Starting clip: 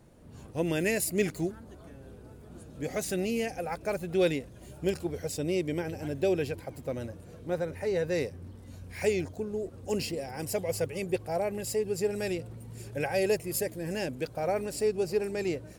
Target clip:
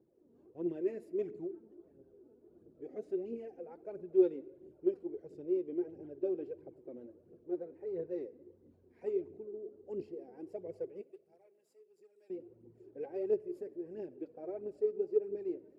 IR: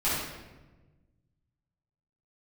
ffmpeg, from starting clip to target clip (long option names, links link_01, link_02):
-filter_complex "[0:a]aeval=exprs='0.188*(cos(1*acos(clip(val(0)/0.188,-1,1)))-cos(1*PI/2))+0.0266*(cos(3*acos(clip(val(0)/0.188,-1,1)))-cos(3*PI/2))':channel_layout=same,asettb=1/sr,asplit=3[link_01][link_02][link_03];[link_01]atrim=end=11.014[link_04];[link_02]atrim=start=11.01:end=12.3,asetpts=PTS-STARTPTS,afade=type=in:duration=0.004:curve=qsin,afade=type=out:start_time=1.286:duration=0.004:curve=qsin,aderivative[link_05];[link_03]atrim=start=12.296[link_06];[link_04][link_05]acrossfade=duration=0.004:curve1=hsin:curve2=qsin[link_07];[link_07][link_06]acrossfade=duration=0.004:curve1=qsin:curve2=hsin,asplit=2[link_08][link_09];[1:a]atrim=start_sample=2205[link_10];[link_09][link_10]afir=irnorm=-1:irlink=0,volume=-27.5dB[link_11];[link_08][link_11]amix=inputs=2:normalize=0,aphaser=in_gain=1:out_gain=1:delay=4.6:decay=0.55:speed=1.5:type=triangular,bandpass=frequency=370:width_type=q:width=4.6:csg=0"